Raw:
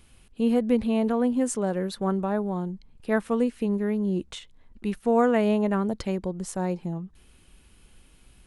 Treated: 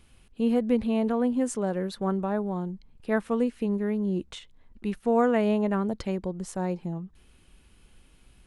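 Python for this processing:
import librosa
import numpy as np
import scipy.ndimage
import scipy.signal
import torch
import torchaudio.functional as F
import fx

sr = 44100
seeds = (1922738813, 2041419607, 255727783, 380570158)

y = fx.high_shelf(x, sr, hz=6900.0, db=-5.0)
y = F.gain(torch.from_numpy(y), -1.5).numpy()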